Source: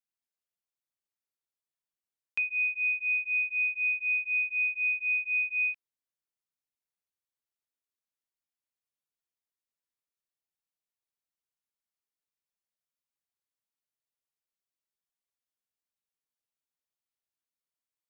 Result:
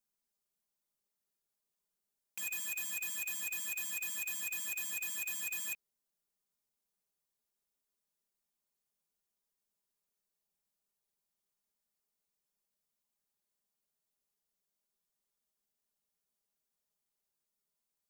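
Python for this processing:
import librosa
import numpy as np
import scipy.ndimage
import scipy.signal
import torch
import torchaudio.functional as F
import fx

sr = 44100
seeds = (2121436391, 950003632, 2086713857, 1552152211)

p1 = fx.peak_eq(x, sr, hz=2200.0, db=-8.0, octaves=2.2)
p2 = p1 + 0.89 * np.pad(p1, (int(4.9 * sr / 1000.0), 0))[:len(p1)]
p3 = np.clip(p2, -10.0 ** (-36.5 / 20.0), 10.0 ** (-36.5 / 20.0))
p4 = p2 + (p3 * librosa.db_to_amplitude(-3.5))
p5 = fx.quant_float(p4, sr, bits=2)
y = (np.mod(10.0 ** (33.5 / 20.0) * p5 + 1.0, 2.0) - 1.0) / 10.0 ** (33.5 / 20.0)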